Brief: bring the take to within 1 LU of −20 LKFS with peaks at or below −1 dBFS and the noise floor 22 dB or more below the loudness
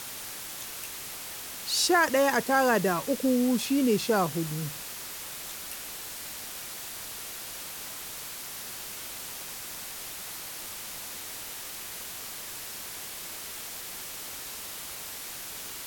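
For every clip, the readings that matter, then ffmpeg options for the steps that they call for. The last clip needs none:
background noise floor −40 dBFS; target noise floor −53 dBFS; integrated loudness −31.0 LKFS; sample peak −11.5 dBFS; target loudness −20.0 LKFS
→ -af "afftdn=noise_reduction=13:noise_floor=-40"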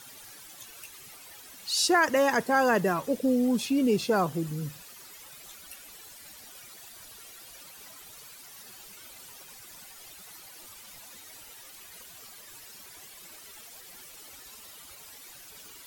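background noise floor −49 dBFS; integrated loudness −25.5 LKFS; sample peak −12.0 dBFS; target loudness −20.0 LKFS
→ -af "volume=5.5dB"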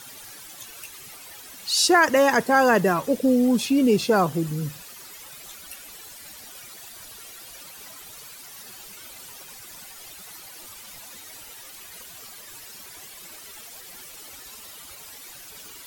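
integrated loudness −20.0 LKFS; sample peak −6.5 dBFS; background noise floor −43 dBFS

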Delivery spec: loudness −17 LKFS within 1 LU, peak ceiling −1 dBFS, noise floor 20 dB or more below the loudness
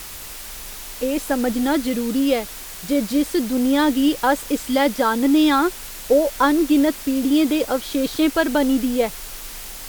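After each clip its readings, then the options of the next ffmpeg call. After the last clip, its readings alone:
background noise floor −35 dBFS; target noise floor −40 dBFS; integrated loudness −19.5 LKFS; sample peak −3.5 dBFS; target loudness −17.0 LKFS
→ -af "afftdn=noise_reduction=6:noise_floor=-35"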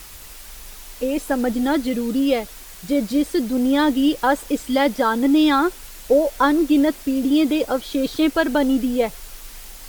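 background noise floor −40 dBFS; integrated loudness −19.5 LKFS; sample peak −4.0 dBFS; target loudness −17.0 LKFS
→ -af "volume=2.5dB"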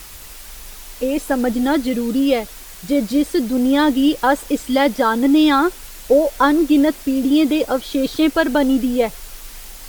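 integrated loudness −17.0 LKFS; sample peak −1.5 dBFS; background noise floor −37 dBFS

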